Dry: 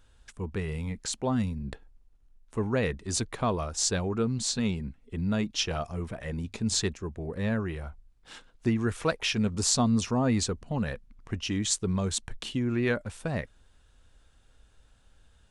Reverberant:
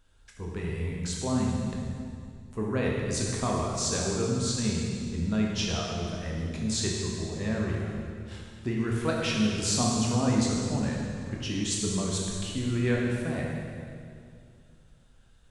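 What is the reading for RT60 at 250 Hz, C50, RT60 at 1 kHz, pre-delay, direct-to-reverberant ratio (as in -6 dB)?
2.8 s, -0.5 dB, 2.2 s, 14 ms, -2.5 dB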